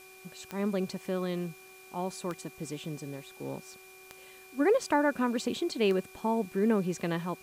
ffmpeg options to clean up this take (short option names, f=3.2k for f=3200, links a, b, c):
-af "adeclick=t=4,bandreject=f=376.5:t=h:w=4,bandreject=f=753:t=h:w=4,bandreject=f=1.1295k:t=h:w=4,bandreject=f=1.506k:t=h:w=4,bandreject=f=2.4k:w=30,afftdn=nr=22:nf=-52"